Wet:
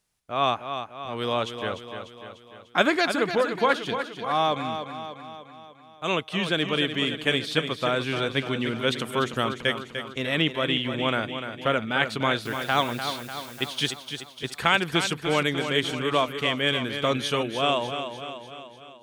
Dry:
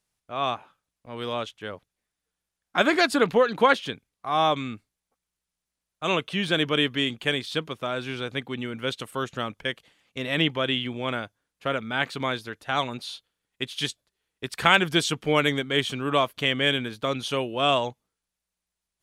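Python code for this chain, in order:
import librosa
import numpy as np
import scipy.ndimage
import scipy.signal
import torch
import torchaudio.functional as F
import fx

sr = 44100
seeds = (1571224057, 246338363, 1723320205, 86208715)

p1 = fx.rider(x, sr, range_db=4, speed_s=0.5)
p2 = fx.quant_dither(p1, sr, seeds[0], bits=8, dither='triangular', at=(12.44, 13.68), fade=0.02)
y = p2 + fx.echo_feedback(p2, sr, ms=297, feedback_pct=56, wet_db=-8.5, dry=0)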